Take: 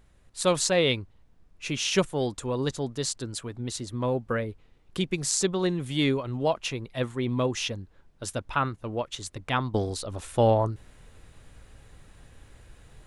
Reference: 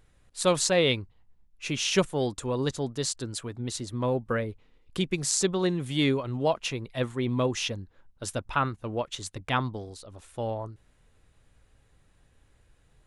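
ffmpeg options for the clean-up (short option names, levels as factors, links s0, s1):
-af "agate=range=0.0891:threshold=0.00447,asetnsamples=n=441:p=0,asendcmd='9.74 volume volume -11dB',volume=1"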